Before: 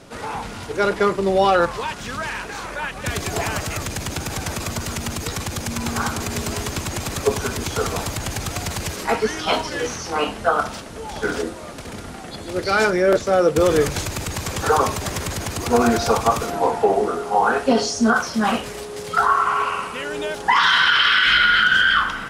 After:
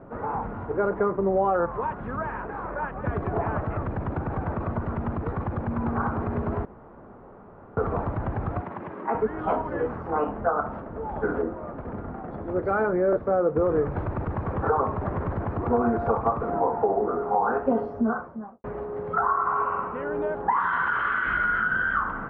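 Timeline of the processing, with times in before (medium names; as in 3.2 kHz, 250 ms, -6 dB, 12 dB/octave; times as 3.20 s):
6.65–7.77 s: room tone
8.61–9.15 s: cabinet simulation 260–5800 Hz, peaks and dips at 480 Hz -7 dB, 720 Hz -5 dB, 1.4 kHz -4 dB, 4.4 kHz -8 dB
17.77–18.64 s: studio fade out
whole clip: low-pass 1.3 kHz 24 dB/octave; compression 2.5:1, threshold -22 dBFS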